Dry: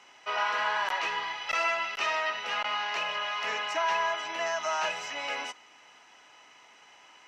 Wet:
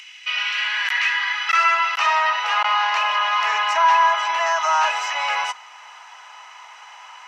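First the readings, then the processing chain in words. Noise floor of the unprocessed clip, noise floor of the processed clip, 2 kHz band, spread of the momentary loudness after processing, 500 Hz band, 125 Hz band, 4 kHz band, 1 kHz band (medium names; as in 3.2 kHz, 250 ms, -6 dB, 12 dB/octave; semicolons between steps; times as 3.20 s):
-57 dBFS, -43 dBFS, +10.5 dB, 6 LU, +3.5 dB, no reading, +9.5 dB, +12.5 dB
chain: high-pass 160 Hz; in parallel at +1.5 dB: peak limiter -27 dBFS, peak gain reduction 10 dB; on the sum: upward compressor, threshold -46 dBFS; high-pass sweep 2.5 kHz -> 960 Hz, 0.55–2.09 s; trim +3 dB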